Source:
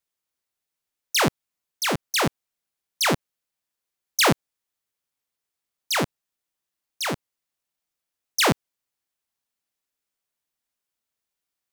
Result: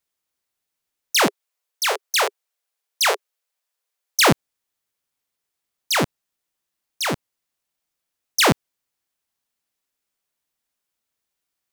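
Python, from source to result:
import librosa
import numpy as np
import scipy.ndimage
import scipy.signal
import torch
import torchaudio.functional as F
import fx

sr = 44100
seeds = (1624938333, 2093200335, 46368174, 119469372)

y = fx.steep_highpass(x, sr, hz=400.0, slope=96, at=(1.26, 4.2), fade=0.02)
y = fx.quant_float(y, sr, bits=6)
y = y * 10.0 ** (3.5 / 20.0)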